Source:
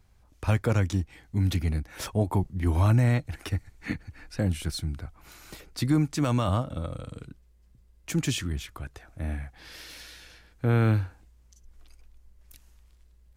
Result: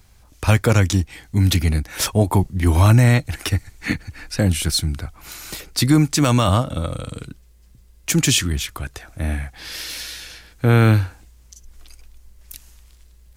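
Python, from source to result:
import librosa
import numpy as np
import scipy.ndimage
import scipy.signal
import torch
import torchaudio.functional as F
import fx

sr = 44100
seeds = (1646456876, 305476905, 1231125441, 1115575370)

y = fx.high_shelf(x, sr, hz=2500.0, db=8.5)
y = F.gain(torch.from_numpy(y), 8.5).numpy()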